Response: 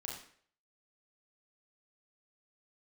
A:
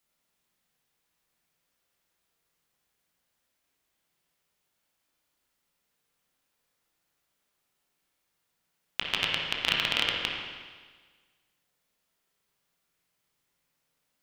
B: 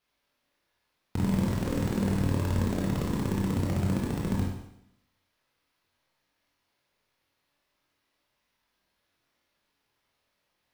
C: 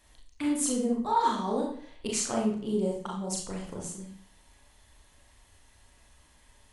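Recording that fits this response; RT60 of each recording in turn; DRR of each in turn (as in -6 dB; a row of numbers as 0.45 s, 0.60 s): C; 1.5 s, 0.75 s, 0.55 s; -2.5 dB, -3.5 dB, -2.5 dB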